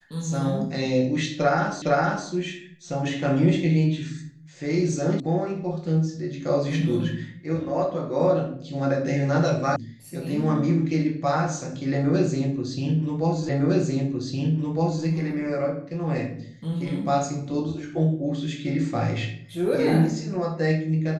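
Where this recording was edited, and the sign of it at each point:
1.82 repeat of the last 0.46 s
5.2 sound cut off
9.76 sound cut off
13.49 repeat of the last 1.56 s

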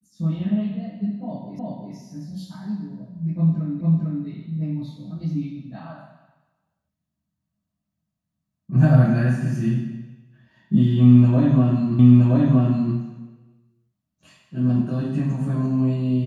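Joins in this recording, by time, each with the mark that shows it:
1.59 repeat of the last 0.36 s
3.81 repeat of the last 0.45 s
11.99 repeat of the last 0.97 s

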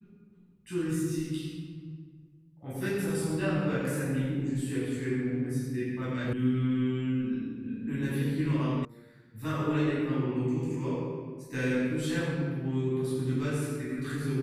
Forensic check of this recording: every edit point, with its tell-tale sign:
6.33 sound cut off
8.85 sound cut off

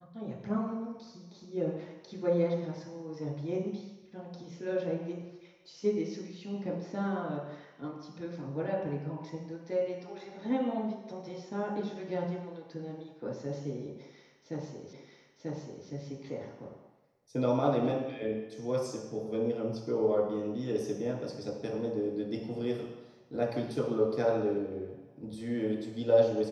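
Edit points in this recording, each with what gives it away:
14.93 repeat of the last 0.94 s

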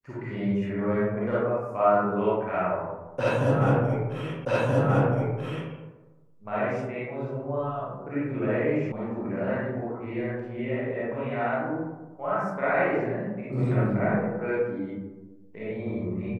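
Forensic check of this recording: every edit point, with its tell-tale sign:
4.45 repeat of the last 1.28 s
8.92 sound cut off

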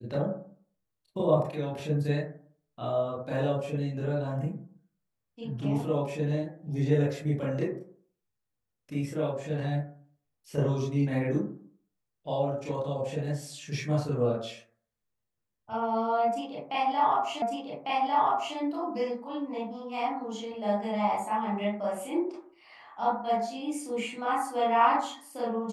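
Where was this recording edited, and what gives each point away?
17.42 repeat of the last 1.15 s

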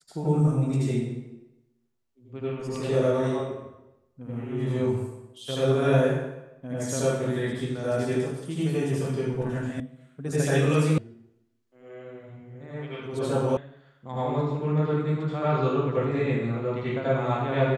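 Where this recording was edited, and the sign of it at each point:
9.8 sound cut off
10.98 sound cut off
13.57 sound cut off

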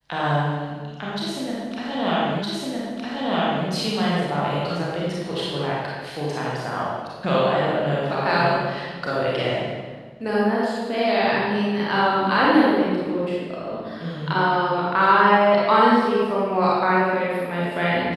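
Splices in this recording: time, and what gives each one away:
2.42 repeat of the last 1.26 s

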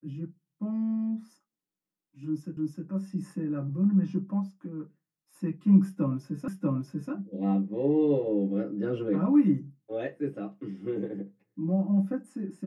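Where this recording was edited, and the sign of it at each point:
2.57 repeat of the last 0.31 s
6.48 repeat of the last 0.64 s

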